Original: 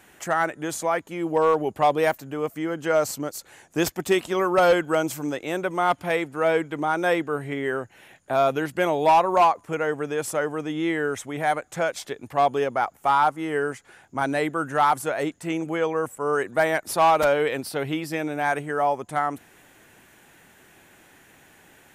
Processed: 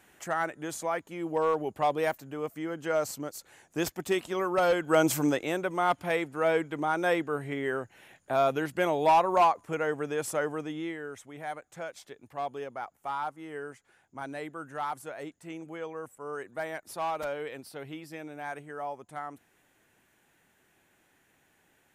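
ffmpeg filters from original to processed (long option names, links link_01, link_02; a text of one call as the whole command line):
ffmpeg -i in.wav -af "volume=4dB,afade=type=in:start_time=4.8:duration=0.36:silence=0.281838,afade=type=out:start_time=5.16:duration=0.42:silence=0.375837,afade=type=out:start_time=10.51:duration=0.47:silence=0.334965" out.wav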